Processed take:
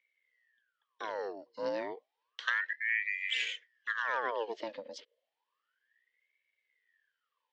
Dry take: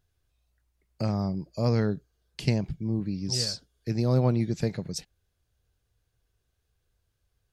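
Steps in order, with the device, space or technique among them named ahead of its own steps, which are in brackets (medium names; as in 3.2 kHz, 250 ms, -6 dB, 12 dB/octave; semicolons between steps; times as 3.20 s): voice changer toy (ring modulator with a swept carrier 1.3 kHz, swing 70%, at 0.31 Hz; cabinet simulation 450–4900 Hz, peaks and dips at 480 Hz +9 dB, 750 Hz -10 dB, 1.3 kHz -7 dB, 1.8 kHz +8 dB, 3.1 kHz +10 dB); trim -6 dB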